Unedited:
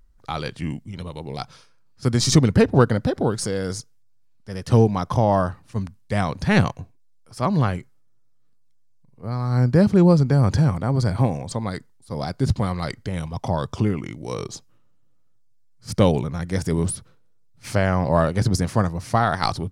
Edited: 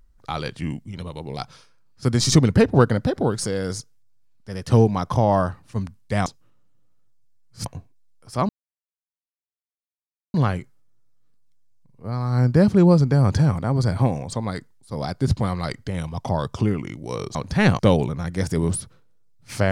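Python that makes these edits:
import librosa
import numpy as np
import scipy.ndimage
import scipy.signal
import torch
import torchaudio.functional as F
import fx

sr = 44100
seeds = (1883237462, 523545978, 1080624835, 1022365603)

y = fx.edit(x, sr, fx.swap(start_s=6.26, length_s=0.44, other_s=14.54, other_length_s=1.4),
    fx.insert_silence(at_s=7.53, length_s=1.85), tone=tone)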